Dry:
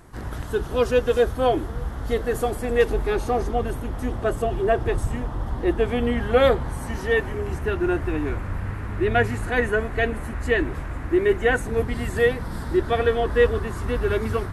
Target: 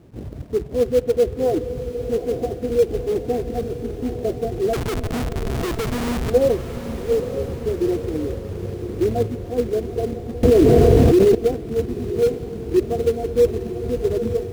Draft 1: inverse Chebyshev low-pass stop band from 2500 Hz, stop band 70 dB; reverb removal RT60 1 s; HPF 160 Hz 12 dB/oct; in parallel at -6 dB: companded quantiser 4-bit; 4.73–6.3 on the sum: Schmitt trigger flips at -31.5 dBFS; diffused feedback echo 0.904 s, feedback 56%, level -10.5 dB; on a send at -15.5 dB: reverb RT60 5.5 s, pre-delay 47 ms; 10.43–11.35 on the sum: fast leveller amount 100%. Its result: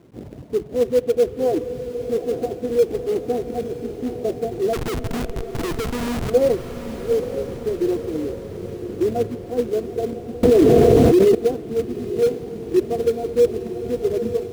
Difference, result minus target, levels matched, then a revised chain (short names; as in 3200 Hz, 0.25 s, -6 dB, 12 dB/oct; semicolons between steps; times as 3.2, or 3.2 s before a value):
125 Hz band -4.5 dB
inverse Chebyshev low-pass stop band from 2500 Hz, stop band 70 dB; reverb removal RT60 1 s; HPF 78 Hz 12 dB/oct; in parallel at -6 dB: companded quantiser 4-bit; 4.73–6.3 on the sum: Schmitt trigger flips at -31.5 dBFS; diffused feedback echo 0.904 s, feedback 56%, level -10.5 dB; on a send at -15.5 dB: reverb RT60 5.5 s, pre-delay 47 ms; 10.43–11.35 on the sum: fast leveller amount 100%